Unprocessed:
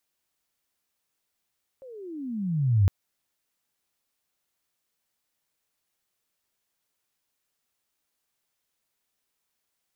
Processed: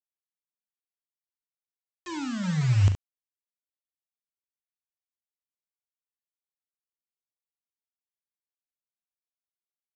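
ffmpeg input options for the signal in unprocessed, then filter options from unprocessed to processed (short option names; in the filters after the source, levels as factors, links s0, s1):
-f lavfi -i "aevalsrc='pow(10,(-15+27*(t/1.06-1))/20)*sin(2*PI*546*1.06/(-31*log(2)/12)*(exp(-31*log(2)/12*t/1.06)-1))':d=1.06:s=44100"
-af "bandreject=f=940:w=8.1,aresample=16000,acrusher=bits=5:mix=0:aa=0.000001,aresample=44100,aecho=1:1:39|70:0.266|0.355"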